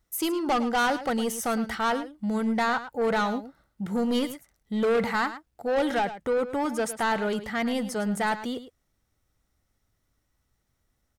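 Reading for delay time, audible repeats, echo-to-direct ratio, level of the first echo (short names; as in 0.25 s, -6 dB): 0.108 s, 1, -13.0 dB, -13.0 dB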